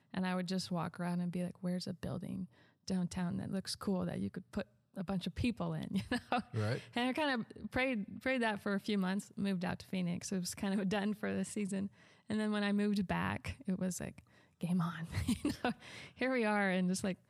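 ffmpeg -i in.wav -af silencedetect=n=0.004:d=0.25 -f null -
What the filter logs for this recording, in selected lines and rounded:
silence_start: 2.45
silence_end: 2.88 | silence_duration: 0.42
silence_start: 4.63
silence_end: 4.96 | silence_duration: 0.33
silence_start: 11.88
silence_end: 12.30 | silence_duration: 0.42
silence_start: 14.19
silence_end: 14.61 | silence_duration: 0.42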